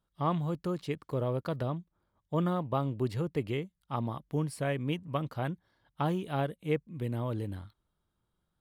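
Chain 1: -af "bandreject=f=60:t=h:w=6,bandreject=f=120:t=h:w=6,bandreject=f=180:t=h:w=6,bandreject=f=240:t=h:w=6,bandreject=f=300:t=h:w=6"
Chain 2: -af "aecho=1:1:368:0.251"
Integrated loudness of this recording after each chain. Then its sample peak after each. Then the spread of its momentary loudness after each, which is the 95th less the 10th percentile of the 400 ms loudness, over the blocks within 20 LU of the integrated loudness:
-34.5 LUFS, -33.5 LUFS; -17.0 dBFS, -17.0 dBFS; 6 LU, 8 LU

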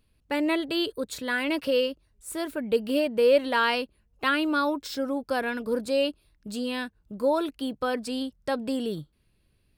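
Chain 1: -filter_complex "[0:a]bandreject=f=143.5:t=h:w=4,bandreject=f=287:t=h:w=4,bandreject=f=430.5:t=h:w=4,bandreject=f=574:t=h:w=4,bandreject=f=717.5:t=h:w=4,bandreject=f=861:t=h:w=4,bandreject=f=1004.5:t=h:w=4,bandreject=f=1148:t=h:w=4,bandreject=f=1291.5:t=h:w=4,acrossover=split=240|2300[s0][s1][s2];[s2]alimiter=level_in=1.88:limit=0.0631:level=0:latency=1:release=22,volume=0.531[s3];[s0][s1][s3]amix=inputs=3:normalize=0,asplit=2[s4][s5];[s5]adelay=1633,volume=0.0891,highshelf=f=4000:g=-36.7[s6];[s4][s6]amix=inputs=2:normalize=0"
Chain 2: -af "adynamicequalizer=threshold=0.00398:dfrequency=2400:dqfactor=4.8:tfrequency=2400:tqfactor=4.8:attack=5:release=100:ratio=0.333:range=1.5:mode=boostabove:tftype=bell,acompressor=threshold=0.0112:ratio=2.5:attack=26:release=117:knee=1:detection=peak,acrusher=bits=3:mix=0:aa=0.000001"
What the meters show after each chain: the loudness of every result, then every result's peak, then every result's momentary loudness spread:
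-28.0 LUFS, -46.0 LUFS; -11.5 dBFS, -17.0 dBFS; 10 LU, 11 LU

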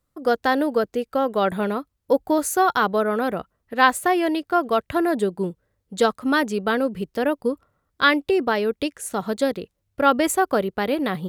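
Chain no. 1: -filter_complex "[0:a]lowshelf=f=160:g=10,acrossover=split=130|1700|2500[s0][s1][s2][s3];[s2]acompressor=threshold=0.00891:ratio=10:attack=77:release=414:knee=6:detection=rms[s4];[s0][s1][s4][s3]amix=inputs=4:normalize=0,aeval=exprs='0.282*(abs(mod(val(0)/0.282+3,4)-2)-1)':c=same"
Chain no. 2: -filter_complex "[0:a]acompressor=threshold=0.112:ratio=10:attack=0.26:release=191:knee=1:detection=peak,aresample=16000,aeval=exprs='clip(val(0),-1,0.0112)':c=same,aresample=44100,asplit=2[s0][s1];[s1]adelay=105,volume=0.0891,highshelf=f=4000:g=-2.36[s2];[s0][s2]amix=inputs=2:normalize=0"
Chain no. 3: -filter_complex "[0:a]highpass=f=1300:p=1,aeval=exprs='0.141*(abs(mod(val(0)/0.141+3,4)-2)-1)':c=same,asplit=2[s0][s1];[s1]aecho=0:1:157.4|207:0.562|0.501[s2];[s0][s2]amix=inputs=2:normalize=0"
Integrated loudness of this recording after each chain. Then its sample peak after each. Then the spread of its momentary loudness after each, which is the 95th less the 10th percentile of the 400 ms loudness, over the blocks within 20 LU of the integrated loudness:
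-22.0 LUFS, -31.5 LUFS, -27.5 LUFS; -11.0 dBFS, -16.5 dBFS, -12.0 dBFS; 7 LU, 6 LU, 10 LU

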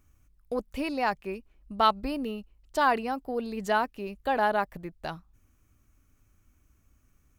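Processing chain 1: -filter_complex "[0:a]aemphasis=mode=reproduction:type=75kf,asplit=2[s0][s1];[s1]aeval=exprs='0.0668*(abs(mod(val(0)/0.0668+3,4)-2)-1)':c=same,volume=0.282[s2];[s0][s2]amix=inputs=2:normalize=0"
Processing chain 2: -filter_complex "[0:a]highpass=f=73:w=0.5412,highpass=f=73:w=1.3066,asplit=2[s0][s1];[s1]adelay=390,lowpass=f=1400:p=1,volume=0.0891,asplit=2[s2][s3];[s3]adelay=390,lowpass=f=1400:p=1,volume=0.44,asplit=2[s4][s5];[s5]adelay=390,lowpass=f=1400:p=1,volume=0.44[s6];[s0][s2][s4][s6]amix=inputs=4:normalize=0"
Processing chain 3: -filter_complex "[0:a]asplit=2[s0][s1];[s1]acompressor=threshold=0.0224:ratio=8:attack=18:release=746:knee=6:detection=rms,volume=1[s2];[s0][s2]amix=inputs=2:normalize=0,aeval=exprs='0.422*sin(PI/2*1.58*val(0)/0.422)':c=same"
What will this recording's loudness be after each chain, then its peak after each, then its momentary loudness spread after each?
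-29.5 LUFS, -29.5 LUFS, -21.0 LUFS; -10.5 dBFS, -9.0 dBFS, -7.5 dBFS; 13 LU, 14 LU, 11 LU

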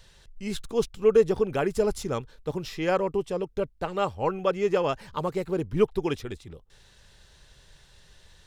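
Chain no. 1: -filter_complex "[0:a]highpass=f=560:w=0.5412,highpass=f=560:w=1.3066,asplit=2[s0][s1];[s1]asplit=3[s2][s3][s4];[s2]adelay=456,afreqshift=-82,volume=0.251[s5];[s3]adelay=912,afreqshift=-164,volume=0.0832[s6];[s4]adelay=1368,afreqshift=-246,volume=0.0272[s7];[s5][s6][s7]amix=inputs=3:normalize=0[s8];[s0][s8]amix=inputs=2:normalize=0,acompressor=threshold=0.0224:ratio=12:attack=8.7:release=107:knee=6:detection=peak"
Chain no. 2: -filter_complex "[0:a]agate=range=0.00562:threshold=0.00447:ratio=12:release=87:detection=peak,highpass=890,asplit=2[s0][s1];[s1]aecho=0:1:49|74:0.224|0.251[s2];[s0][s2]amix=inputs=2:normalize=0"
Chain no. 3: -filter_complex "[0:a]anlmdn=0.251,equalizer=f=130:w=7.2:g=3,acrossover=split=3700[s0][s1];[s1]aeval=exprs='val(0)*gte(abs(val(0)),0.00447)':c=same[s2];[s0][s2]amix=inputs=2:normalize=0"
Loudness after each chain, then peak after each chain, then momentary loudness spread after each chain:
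-39.0 LUFS, -35.5 LUFS, -27.5 LUFS; -21.0 dBFS, -15.5 dBFS, -9.5 dBFS; 19 LU, 9 LU, 12 LU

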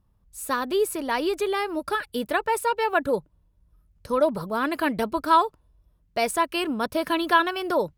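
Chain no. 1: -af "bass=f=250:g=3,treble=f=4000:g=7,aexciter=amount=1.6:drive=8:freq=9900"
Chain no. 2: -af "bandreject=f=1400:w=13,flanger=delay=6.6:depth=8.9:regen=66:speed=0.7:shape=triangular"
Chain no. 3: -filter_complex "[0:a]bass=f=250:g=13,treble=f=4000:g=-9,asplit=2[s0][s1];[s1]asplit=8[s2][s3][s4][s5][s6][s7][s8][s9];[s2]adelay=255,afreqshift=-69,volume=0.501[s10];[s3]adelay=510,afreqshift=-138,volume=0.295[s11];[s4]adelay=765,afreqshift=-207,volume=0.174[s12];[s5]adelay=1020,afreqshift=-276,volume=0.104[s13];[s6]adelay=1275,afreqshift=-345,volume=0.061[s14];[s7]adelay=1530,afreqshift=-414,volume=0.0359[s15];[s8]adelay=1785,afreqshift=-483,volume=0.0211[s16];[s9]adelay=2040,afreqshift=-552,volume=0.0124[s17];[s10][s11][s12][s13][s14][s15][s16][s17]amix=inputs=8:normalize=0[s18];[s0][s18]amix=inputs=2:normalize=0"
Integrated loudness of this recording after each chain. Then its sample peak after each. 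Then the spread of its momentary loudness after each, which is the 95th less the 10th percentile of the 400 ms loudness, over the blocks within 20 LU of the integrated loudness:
-23.5 LUFS, -29.5 LUFS, -22.5 LUFS; -6.5 dBFS, -12.5 dBFS, -6.0 dBFS; 7 LU, 7 LU, 9 LU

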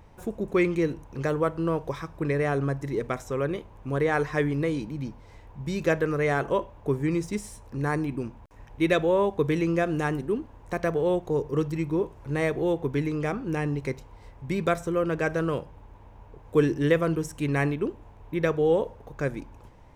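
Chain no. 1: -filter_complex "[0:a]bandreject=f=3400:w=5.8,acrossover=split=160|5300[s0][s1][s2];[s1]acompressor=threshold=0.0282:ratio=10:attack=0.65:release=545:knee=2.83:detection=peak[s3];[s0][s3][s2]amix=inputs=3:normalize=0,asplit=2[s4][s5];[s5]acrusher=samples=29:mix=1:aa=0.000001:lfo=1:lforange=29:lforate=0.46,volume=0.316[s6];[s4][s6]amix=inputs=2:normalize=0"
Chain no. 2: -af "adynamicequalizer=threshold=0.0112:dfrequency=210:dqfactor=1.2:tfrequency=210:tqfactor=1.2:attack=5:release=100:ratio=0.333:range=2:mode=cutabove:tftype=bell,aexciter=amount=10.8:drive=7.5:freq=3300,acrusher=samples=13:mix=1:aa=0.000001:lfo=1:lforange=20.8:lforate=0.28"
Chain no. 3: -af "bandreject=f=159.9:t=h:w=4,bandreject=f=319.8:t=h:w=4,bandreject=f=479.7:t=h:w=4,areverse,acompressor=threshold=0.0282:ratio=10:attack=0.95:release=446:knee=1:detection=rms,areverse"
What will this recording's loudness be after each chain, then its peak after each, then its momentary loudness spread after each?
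-34.0 LUFS, -25.0 LUFS, -39.5 LUFS; -19.5 dBFS, -3.5 dBFS, -26.5 dBFS; 10 LU, 11 LU, 8 LU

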